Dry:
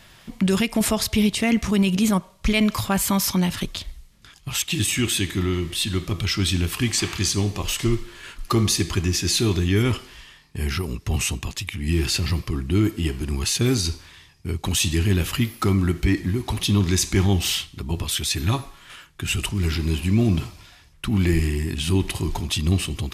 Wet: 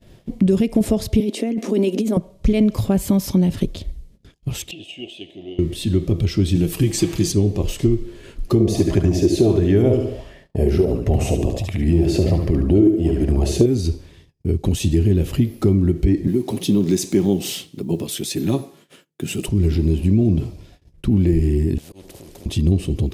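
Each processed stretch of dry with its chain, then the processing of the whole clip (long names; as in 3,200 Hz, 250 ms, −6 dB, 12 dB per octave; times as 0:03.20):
0:01.20–0:02.17: elliptic high-pass filter 230 Hz + compressor whose output falls as the input rises −26 dBFS
0:04.71–0:05.59: pair of resonant band-passes 1,400 Hz, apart 2.1 octaves + transient designer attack +9 dB, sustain +2 dB
0:06.55–0:07.32: high-shelf EQ 7,700 Hz +9.5 dB + comb filter 6.2 ms, depth 64%
0:08.60–0:13.66: parametric band 640 Hz +14 dB 0.64 octaves + repeating echo 72 ms, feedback 40%, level −6 dB + auto-filter bell 1.4 Hz 340–1,900 Hz +9 dB
0:16.27–0:19.48: one scale factor per block 7 bits + high-pass filter 150 Hz 24 dB per octave + high-shelf EQ 5,600 Hz +6.5 dB
0:21.78–0:22.46: volume swells 443 ms + downward compressor 10 to 1, threshold −30 dBFS + every bin compressed towards the loudest bin 4 to 1
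whole clip: low shelf with overshoot 740 Hz +14 dB, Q 1.5; noise gate −39 dBFS, range −23 dB; downward compressor 4 to 1, threshold −6 dBFS; level −6.5 dB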